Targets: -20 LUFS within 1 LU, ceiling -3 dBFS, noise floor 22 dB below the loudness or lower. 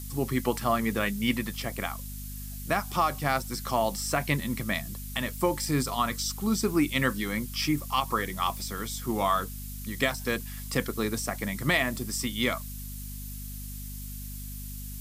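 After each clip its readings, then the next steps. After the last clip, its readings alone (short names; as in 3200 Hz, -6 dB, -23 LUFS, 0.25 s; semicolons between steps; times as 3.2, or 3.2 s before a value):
hum 50 Hz; harmonics up to 250 Hz; hum level -37 dBFS; noise floor -38 dBFS; noise floor target -52 dBFS; loudness -29.5 LUFS; peak -10.5 dBFS; loudness target -20.0 LUFS
-> de-hum 50 Hz, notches 5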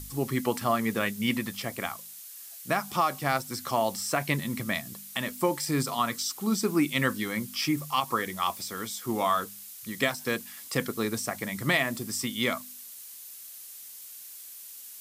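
hum none; noise floor -45 dBFS; noise floor target -51 dBFS
-> noise print and reduce 6 dB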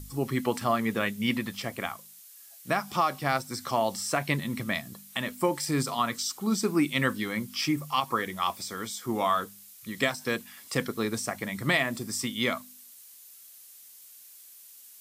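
noise floor -51 dBFS; noise floor target -52 dBFS
-> noise print and reduce 6 dB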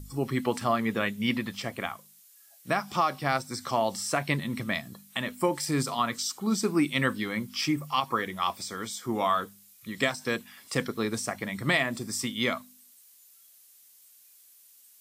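noise floor -57 dBFS; loudness -29.5 LUFS; peak -10.5 dBFS; loudness target -20.0 LUFS
-> gain +9.5 dB; limiter -3 dBFS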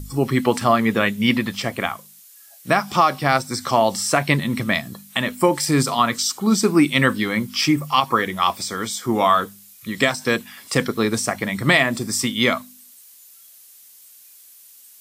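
loudness -20.0 LUFS; peak -3.0 dBFS; noise floor -48 dBFS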